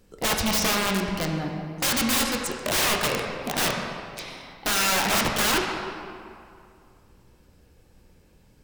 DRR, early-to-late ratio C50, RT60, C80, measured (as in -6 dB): 1.0 dB, 3.0 dB, 2.4 s, 4.0 dB